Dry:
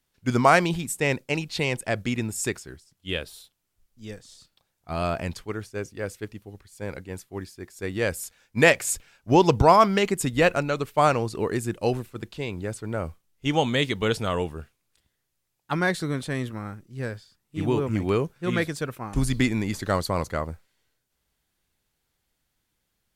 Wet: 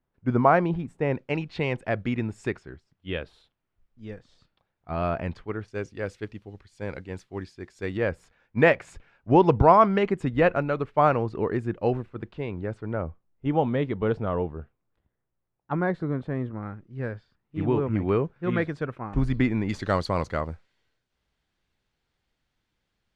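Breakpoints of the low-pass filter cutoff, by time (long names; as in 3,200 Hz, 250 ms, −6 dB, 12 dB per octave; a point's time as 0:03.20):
1,200 Hz
from 0:01.15 2,100 Hz
from 0:05.68 4,000 Hz
from 0:07.97 1,800 Hz
from 0:13.02 1,100 Hz
from 0:16.63 1,900 Hz
from 0:19.69 4,300 Hz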